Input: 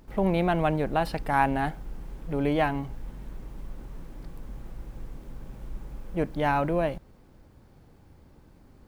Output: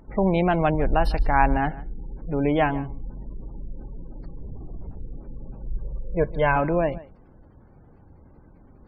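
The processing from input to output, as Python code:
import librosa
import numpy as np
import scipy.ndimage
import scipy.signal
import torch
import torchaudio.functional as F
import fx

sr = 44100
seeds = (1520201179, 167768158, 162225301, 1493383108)

y = fx.spec_gate(x, sr, threshold_db=-30, keep='strong')
y = fx.low_shelf_res(y, sr, hz=100.0, db=10.5, q=1.5, at=(0.74, 1.57))
y = fx.comb(y, sr, ms=1.9, depth=0.7, at=(5.66, 6.56))
y = y + 10.0 ** (-19.5 / 20.0) * np.pad(y, (int(151 * sr / 1000.0), 0))[:len(y)]
y = fx.lpc_vocoder(y, sr, seeds[0], excitation='whisper', order=10, at=(4.39, 5.02))
y = F.gain(torch.from_numpy(y), 3.5).numpy()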